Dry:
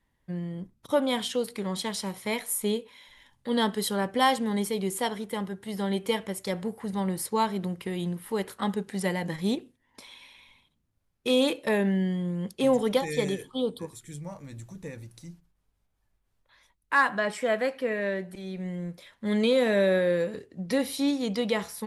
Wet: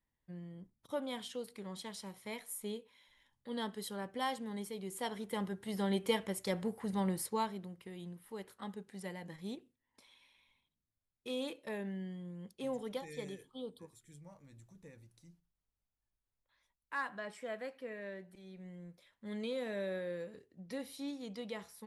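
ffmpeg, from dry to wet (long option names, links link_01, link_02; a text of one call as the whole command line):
ffmpeg -i in.wav -af "volume=-5dB,afade=type=in:start_time=4.87:duration=0.59:silence=0.354813,afade=type=out:start_time=7.07:duration=0.59:silence=0.281838" out.wav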